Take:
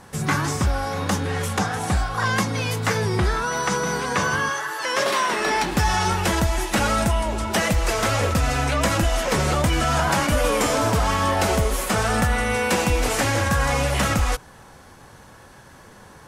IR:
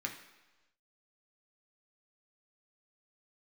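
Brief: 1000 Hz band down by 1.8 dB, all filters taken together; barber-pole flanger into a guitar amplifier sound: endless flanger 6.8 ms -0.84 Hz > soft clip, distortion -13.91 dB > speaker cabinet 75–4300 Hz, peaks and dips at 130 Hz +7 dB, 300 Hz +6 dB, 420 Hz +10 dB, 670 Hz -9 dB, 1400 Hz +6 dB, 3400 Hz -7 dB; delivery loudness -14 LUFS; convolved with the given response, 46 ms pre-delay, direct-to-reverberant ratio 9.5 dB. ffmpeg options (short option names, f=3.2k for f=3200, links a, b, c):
-filter_complex "[0:a]equalizer=f=1k:t=o:g=-3.5,asplit=2[a][b];[1:a]atrim=start_sample=2205,adelay=46[c];[b][c]afir=irnorm=-1:irlink=0,volume=-11.5dB[d];[a][d]amix=inputs=2:normalize=0,asplit=2[e][f];[f]adelay=6.8,afreqshift=-0.84[g];[e][g]amix=inputs=2:normalize=1,asoftclip=threshold=-21dB,highpass=75,equalizer=f=130:t=q:w=4:g=7,equalizer=f=300:t=q:w=4:g=6,equalizer=f=420:t=q:w=4:g=10,equalizer=f=670:t=q:w=4:g=-9,equalizer=f=1.4k:t=q:w=4:g=6,equalizer=f=3.4k:t=q:w=4:g=-7,lowpass=f=4.3k:w=0.5412,lowpass=f=4.3k:w=1.3066,volume=12.5dB"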